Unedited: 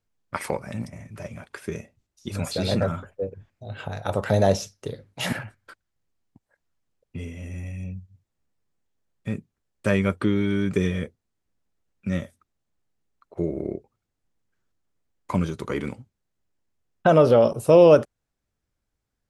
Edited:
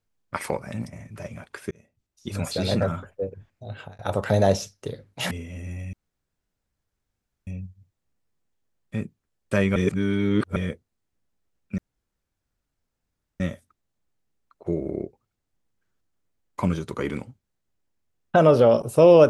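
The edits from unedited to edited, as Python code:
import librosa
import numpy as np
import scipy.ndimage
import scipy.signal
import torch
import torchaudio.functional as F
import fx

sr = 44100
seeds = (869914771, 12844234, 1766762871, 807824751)

y = fx.edit(x, sr, fx.fade_in_span(start_s=1.71, length_s=0.58),
    fx.fade_out_span(start_s=3.7, length_s=0.29),
    fx.cut(start_s=5.31, length_s=1.87),
    fx.insert_room_tone(at_s=7.8, length_s=1.54),
    fx.reverse_span(start_s=10.09, length_s=0.8),
    fx.insert_room_tone(at_s=12.11, length_s=1.62), tone=tone)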